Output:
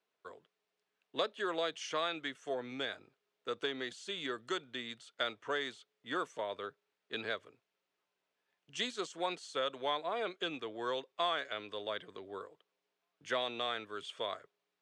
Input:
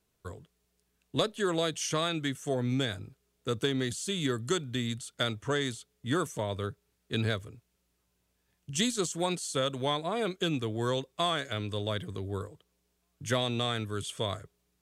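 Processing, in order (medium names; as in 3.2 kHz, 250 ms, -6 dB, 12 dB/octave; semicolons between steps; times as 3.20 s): band-pass 490–3500 Hz; trim -2.5 dB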